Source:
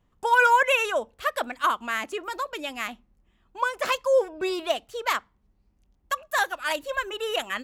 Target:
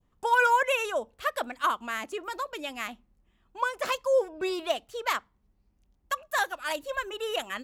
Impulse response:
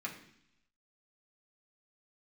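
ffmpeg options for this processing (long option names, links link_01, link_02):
-af "adynamicequalizer=threshold=0.0158:dfrequency=2000:dqfactor=0.72:tfrequency=2000:tqfactor=0.72:attack=5:release=100:ratio=0.375:range=3:mode=cutabove:tftype=bell,volume=-2.5dB"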